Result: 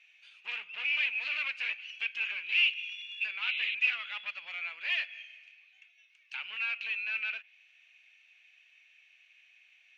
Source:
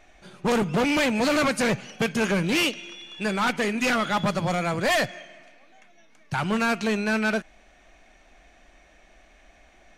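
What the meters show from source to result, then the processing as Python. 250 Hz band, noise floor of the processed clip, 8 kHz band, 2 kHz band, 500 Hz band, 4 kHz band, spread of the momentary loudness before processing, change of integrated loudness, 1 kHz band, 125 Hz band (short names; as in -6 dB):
under -40 dB, -64 dBFS, under -25 dB, -3.5 dB, under -35 dB, -4.0 dB, 9 LU, -7.0 dB, -23.0 dB, under -40 dB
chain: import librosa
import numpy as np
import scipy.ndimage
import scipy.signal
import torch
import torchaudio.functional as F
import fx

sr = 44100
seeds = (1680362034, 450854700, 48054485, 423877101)

y = fx.spec_paint(x, sr, seeds[0], shape='noise', start_s=3.42, length_s=0.33, low_hz=2000.0, high_hz=4100.0, level_db=-32.0)
y = fx.env_lowpass_down(y, sr, base_hz=2700.0, full_db=-23.0)
y = fx.ladder_bandpass(y, sr, hz=2800.0, resonance_pct=75)
y = y * librosa.db_to_amplitude(4.0)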